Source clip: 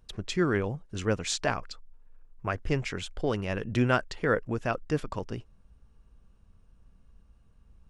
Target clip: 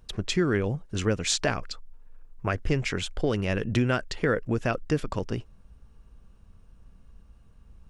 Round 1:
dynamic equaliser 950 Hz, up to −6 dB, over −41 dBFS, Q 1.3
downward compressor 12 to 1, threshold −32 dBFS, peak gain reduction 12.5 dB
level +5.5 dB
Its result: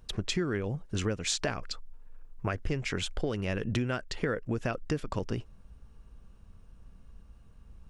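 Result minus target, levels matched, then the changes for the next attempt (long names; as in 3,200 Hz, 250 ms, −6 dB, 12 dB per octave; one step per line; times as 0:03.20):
downward compressor: peak gain reduction +7 dB
change: downward compressor 12 to 1, threshold −24.5 dBFS, peak gain reduction 5.5 dB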